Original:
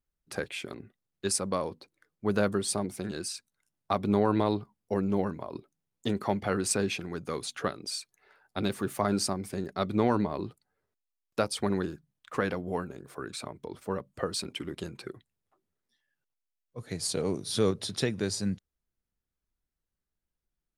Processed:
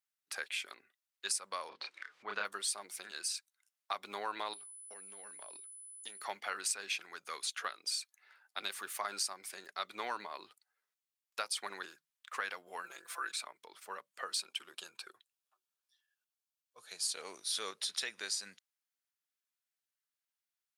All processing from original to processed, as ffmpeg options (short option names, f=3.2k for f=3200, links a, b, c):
-filter_complex "[0:a]asettb=1/sr,asplit=3[a][b][c];[a]atrim=end=1.694[d];[b]atrim=start=1.69:end=2.45,asetpts=PTS-STARTPTS,afade=t=in:d=0.004:c=qsin,afade=t=out:st=0.756:d=0.004:c=qsin,lowpass=3.5k,asplit=2[e][f];[f]adelay=30,volume=-2dB[g];[e][g]amix=inputs=2:normalize=0,atrim=end_sample=33516,acompressor=mode=upward:threshold=-26dB:ratio=2.5:attack=3.2:release=140:knee=2.83:detection=peak[h];[c]atrim=start=2.446[i];[d][h]acrossfade=d=0.004:c1=hsin:c2=qsin[j];[j][i]acrossfade=d=0.004:c1=qsin:c2=hsin,asettb=1/sr,asplit=3[k][l][m];[k]atrim=end=4.534[n];[l]atrim=start=4.53:end=6.25,asetpts=PTS-STARTPTS,afade=t=in:d=0.004:c=qsin,afade=t=out:st=1.716:d=0.004:c=qsin,equalizer=f=1.1k:t=o:w=0.65:g=-8.5,acompressor=threshold=-34dB:ratio=6:attack=3.2:release=140:knee=1:detection=peak,aeval=exprs='val(0)+0.00316*sin(2*PI*10000*n/s)':c=same[o];[m]atrim=start=6.246[p];[n][o]acrossfade=d=0.004:c1=hsin:c2=qsin[q];[q][p]acrossfade=d=0.004:c1=qsin:c2=hsin,asettb=1/sr,asplit=3[r][s][t];[r]atrim=end=12.844[u];[s]atrim=start=12.84:end=13.32,asetpts=PTS-STARTPTS,afade=t=in:d=0.004:c=qsin,afade=t=out:st=0.476:d=0.004:c=qsin,equalizer=f=100:w=0.36:g=-8.5,aecho=1:1:5.9:0.95,atrim=end_sample=21168,acontrast=27[v];[t]atrim=start=13.316[w];[u][v]acrossfade=d=0.004:c1=hsin:c2=qsin[x];[x][w]acrossfade=d=0.004:c1=qsin:c2=hsin,asettb=1/sr,asplit=3[y][z][aa];[y]atrim=end=14.404[ab];[z]atrim=start=14.4:end=17.07,asetpts=PTS-STARTPTS,afade=t=in:d=0.004:c=qsin,afade=t=out:st=2.666:d=0.004:c=qsin,equalizer=f=2k:w=6.5:g=-14,bandreject=f=280:w=5.2[ac];[aa]atrim=start=17.066[ad];[ab][ac]acrossfade=d=0.004:c1=hsin:c2=qsin[ae];[ae][ad]acrossfade=d=0.004:c1=qsin:c2=hsin,highpass=1.4k,acompressor=threshold=-33dB:ratio=6,volume=1dB"